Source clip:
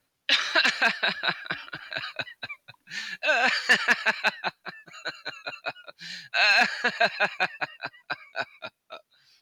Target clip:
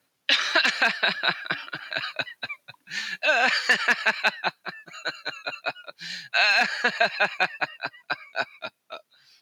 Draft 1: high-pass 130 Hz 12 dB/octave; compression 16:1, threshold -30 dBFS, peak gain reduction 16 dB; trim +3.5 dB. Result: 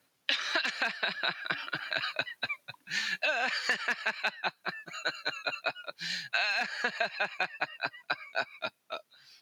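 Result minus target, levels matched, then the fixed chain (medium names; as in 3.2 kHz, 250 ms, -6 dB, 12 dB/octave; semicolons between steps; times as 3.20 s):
compression: peak gain reduction +10.5 dB
high-pass 130 Hz 12 dB/octave; compression 16:1, threshold -19 dBFS, peak gain reduction 6 dB; trim +3.5 dB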